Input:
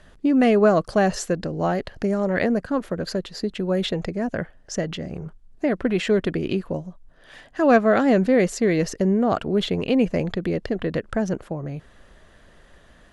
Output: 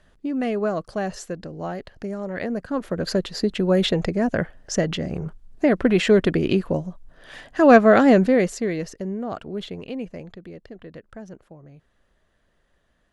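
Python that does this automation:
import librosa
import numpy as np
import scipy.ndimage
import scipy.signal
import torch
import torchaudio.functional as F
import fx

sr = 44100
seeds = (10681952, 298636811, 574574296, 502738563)

y = fx.gain(x, sr, db=fx.line((2.38, -7.5), (3.16, 4.0), (8.08, 4.0), (8.96, -9.0), (9.61, -9.0), (10.46, -15.5)))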